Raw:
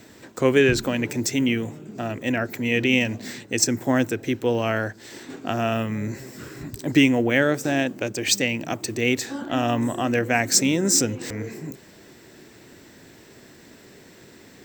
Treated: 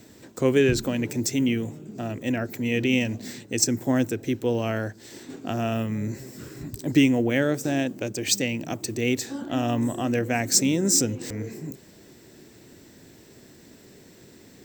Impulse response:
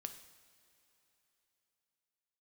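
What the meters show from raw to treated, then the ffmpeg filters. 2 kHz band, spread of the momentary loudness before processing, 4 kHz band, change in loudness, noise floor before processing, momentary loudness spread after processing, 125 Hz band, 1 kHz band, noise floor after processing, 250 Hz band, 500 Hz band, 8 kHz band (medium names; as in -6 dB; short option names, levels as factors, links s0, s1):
-6.0 dB, 15 LU, -3.5 dB, -2.5 dB, -49 dBFS, 15 LU, -0.5 dB, -5.0 dB, -51 dBFS, -1.0 dB, -2.5 dB, -1.5 dB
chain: -af "equalizer=f=1500:w=0.45:g=-7"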